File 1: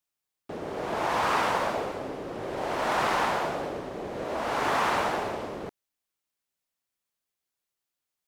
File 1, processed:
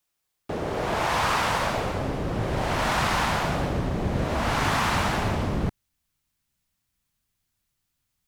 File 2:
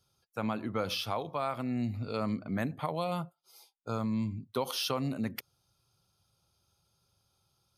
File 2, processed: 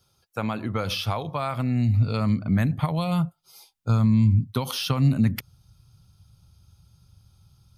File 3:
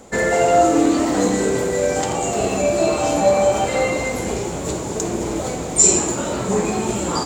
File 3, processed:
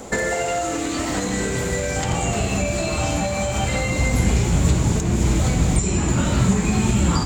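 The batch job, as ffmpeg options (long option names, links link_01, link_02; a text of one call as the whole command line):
ffmpeg -i in.wav -filter_complex "[0:a]alimiter=limit=-11dB:level=0:latency=1:release=312,acrossover=split=1600|3200[link_01][link_02][link_03];[link_01]acompressor=threshold=-31dB:ratio=4[link_04];[link_02]acompressor=threshold=-38dB:ratio=4[link_05];[link_03]acompressor=threshold=-39dB:ratio=4[link_06];[link_04][link_05][link_06]amix=inputs=3:normalize=0,asubboost=boost=9:cutoff=150,volume=7.5dB" out.wav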